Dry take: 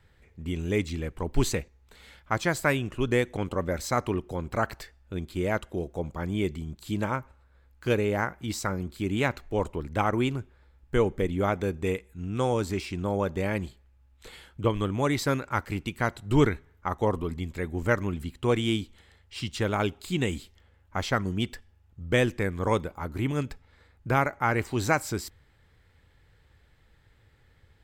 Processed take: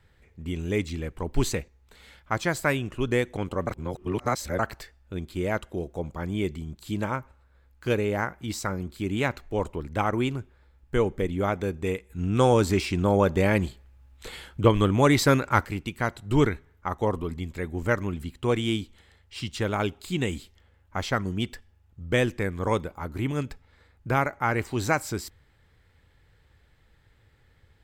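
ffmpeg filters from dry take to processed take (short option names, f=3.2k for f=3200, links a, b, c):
-filter_complex "[0:a]asettb=1/sr,asplit=3[a][b][c];[a]atrim=end=12.104[d];[b]atrim=start=12.1:end=15.67,asetpts=PTS-STARTPTS,afade=t=in:d=0.004:c=qsin,afade=t=out:st=3.566:d=0.004:c=qsin,acontrast=71[e];[c]atrim=start=15.666[f];[d][e]acrossfade=d=0.004:c1=hsin:c2=qsin[g];[g][f]acrossfade=d=0.004:c1=qsin:c2=hsin,asplit=3[h][i][j];[h]atrim=end=3.672[k];[i]atrim=start=3.668:end=4.592,asetpts=PTS-STARTPTS,areverse[l];[j]atrim=start=4.588[m];[k][l]acrossfade=d=0.004:c1=hsin:c2=hsin[n];[n][m]acrossfade=d=0.004:c1=hsin:c2=hsin"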